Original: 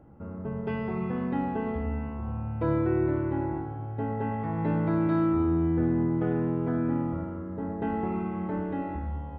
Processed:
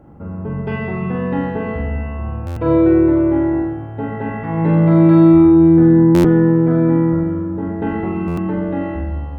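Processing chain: on a send: flutter echo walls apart 7.3 m, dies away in 0.69 s; on the sum: buffer glitch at 2.46/6.14/8.27 s, samples 512, times 8; trim +8 dB

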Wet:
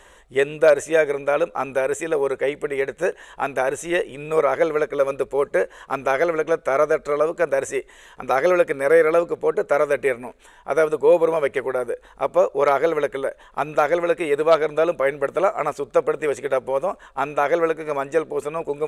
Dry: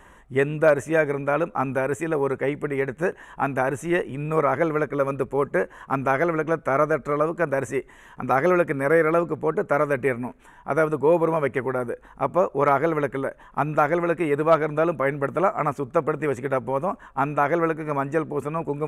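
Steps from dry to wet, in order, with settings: graphic EQ 125/250/500/1000/4000/8000 Hz -10/-7/+7/-3/+11/+6 dB

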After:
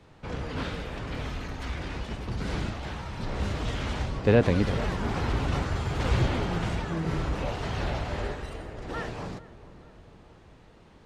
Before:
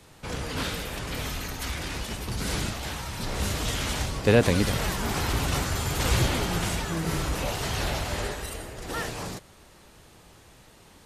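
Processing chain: tape spacing loss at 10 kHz 22 dB; on a send: filtered feedback delay 443 ms, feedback 64%, low-pass 1.2 kHz, level -16 dB

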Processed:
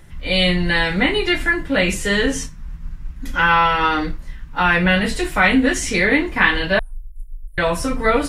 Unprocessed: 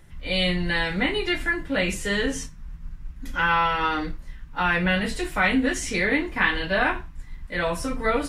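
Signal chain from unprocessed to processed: 6.79–7.58 s: inverse Chebyshev band-stop 110–4900 Hz, stop band 50 dB; trim +6.5 dB

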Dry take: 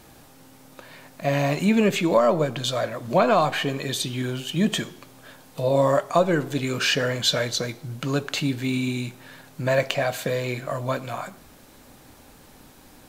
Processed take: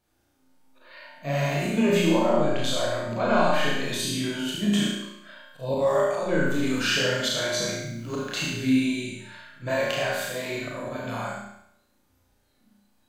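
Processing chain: spectral noise reduction 22 dB; in parallel at -2 dB: compression, threshold -29 dBFS, peak gain reduction 15 dB; on the sum: chorus 0.66 Hz, delay 19 ms, depth 7.1 ms; slow attack 114 ms; 7.67–8.31 s: added noise white -65 dBFS; on a send: flutter echo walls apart 5.9 m, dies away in 0.74 s; on the sum: Schroeder reverb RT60 0.53 s, combs from 31 ms, DRR 1 dB; trim -5 dB

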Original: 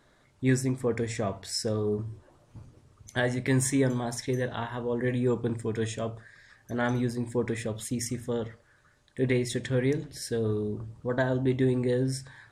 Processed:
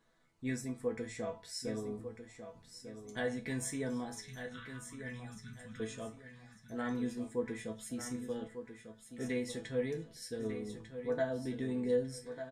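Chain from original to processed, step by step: 4.21–5.80 s: elliptic band-stop 190–1300 Hz; chord resonator E3 sus4, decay 0.2 s; feedback delay 1197 ms, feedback 30%, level -10 dB; trim +3.5 dB

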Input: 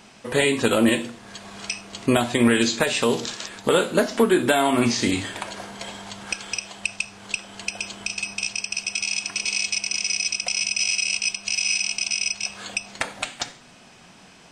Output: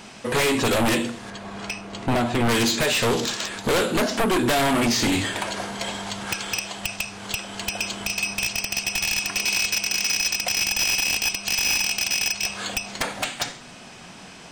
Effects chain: one-sided wavefolder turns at -18.5 dBFS; 1.30–2.49 s: treble shelf 2.7 kHz -12 dB; saturation -23.5 dBFS, distortion -8 dB; trim +6.5 dB

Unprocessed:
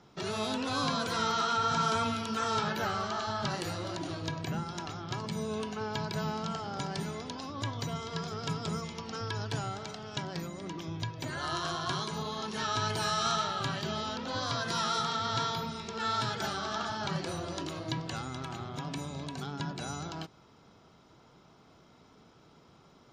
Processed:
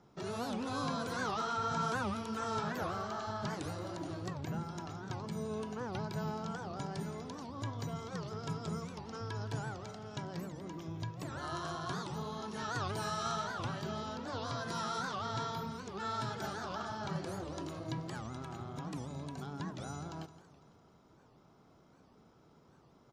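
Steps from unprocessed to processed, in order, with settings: peaking EQ 3.4 kHz -8 dB 2.1 oct; on a send: feedback delay 168 ms, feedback 59%, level -16 dB; on the sum: warped record 78 rpm, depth 250 cents; trim -3.5 dB

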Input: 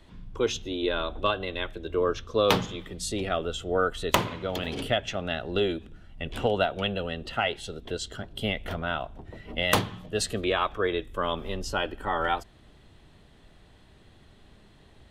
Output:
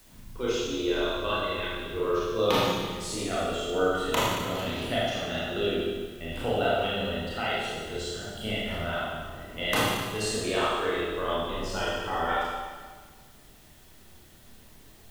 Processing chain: Schroeder reverb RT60 1.5 s, combs from 25 ms, DRR -8 dB; added noise white -50 dBFS; trim -8.5 dB

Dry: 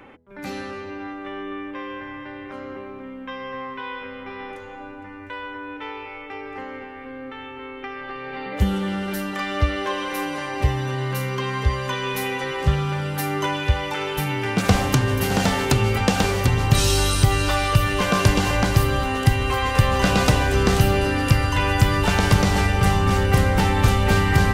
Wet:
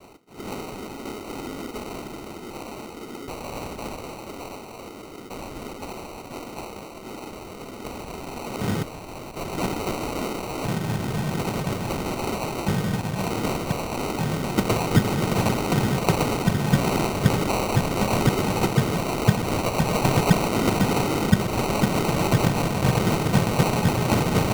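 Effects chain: 8.82–9.52 s: Chebyshev high-pass 1.4 kHz, order 2; noise-vocoded speech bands 6; sample-and-hold 26×; trim -1 dB

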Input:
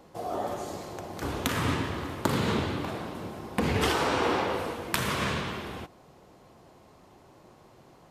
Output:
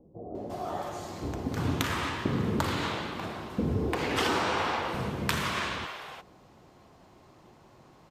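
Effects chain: peaking EQ 11 kHz -7 dB 0.68 oct; bands offset in time lows, highs 350 ms, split 530 Hz

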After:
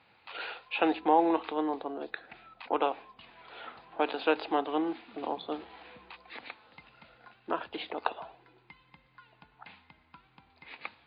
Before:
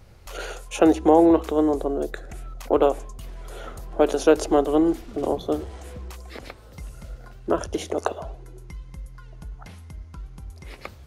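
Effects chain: cabinet simulation 320–4100 Hz, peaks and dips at 390 Hz -10 dB, 580 Hz -8 dB, 890 Hz +6 dB, 1.7 kHz +3 dB, 2.5 kHz +8 dB, 3.8 kHz +5 dB; trim -5 dB; MP3 32 kbps 11.025 kHz

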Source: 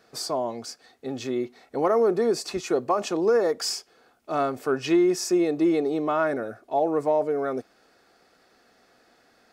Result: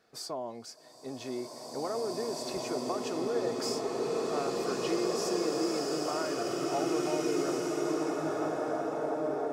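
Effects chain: compression, threshold -23 dBFS, peak gain reduction 7 dB; swelling reverb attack 2370 ms, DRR -4.5 dB; trim -8.5 dB

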